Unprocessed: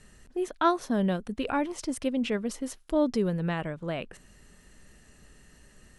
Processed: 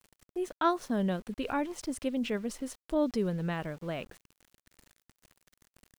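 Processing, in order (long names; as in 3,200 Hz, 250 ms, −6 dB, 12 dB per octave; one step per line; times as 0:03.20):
centre clipping without the shift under −46.5 dBFS
level −3.5 dB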